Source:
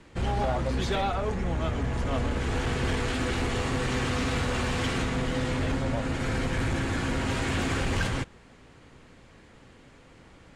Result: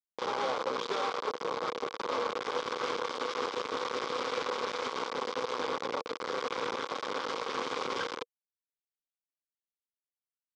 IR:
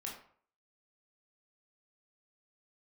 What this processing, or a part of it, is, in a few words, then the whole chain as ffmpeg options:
hand-held game console: -af "acrusher=bits=3:mix=0:aa=0.000001,highpass=450,equalizer=f=480:t=q:w=4:g=10,equalizer=f=670:t=q:w=4:g=-8,equalizer=f=1100:t=q:w=4:g=7,equalizer=f=1800:t=q:w=4:g=-9,equalizer=f=2700:t=q:w=4:g=-8,equalizer=f=4200:t=q:w=4:g=-4,lowpass=f=4800:w=0.5412,lowpass=f=4800:w=1.3066,volume=0.596"

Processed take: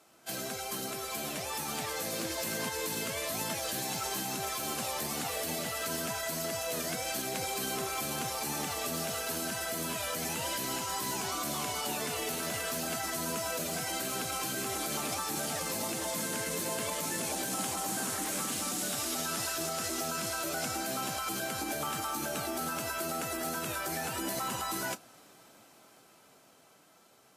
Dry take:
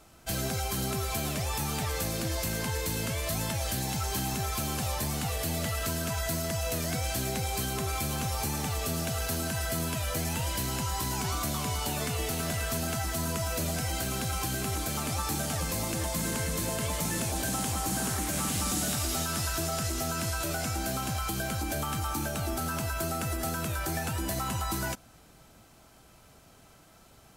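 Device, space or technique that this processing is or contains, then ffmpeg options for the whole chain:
low-bitrate web radio: -af "highpass=260,dynaudnorm=f=240:g=17:m=2,alimiter=limit=0.0841:level=0:latency=1:release=48,volume=0.596" -ar 32000 -c:a aac -b:a 48k

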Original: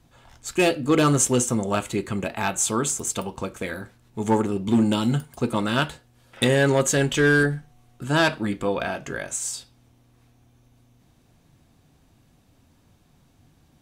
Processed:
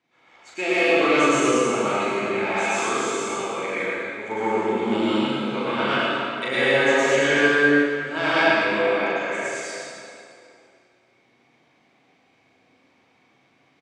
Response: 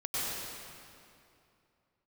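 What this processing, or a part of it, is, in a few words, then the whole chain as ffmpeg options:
station announcement: -filter_complex "[0:a]asettb=1/sr,asplit=3[s0][s1][s2];[s0]atrim=end=5.274[s3];[s1]atrim=start=5.27:end=5.76,asetpts=PTS-STARTPTS,afade=t=in:d=0.004:c=qsin,afade=t=out:st=0.486:d=0.004:c=qsin,lowpass=7600[s4];[s2]atrim=start=5.756[s5];[s3][s4]acrossfade=d=0.004:c1=hsin:c2=qsin[s6];[s6][s5]acrossfade=d=0.004:c1=qsin:c2=hsin,highpass=360,lowpass=4200,equalizer=f=2200:t=o:w=0.28:g=12,aecho=1:1:37.9|113.7:0.794|0.708[s7];[1:a]atrim=start_sample=2205[s8];[s7][s8]afir=irnorm=-1:irlink=0,volume=0.501"

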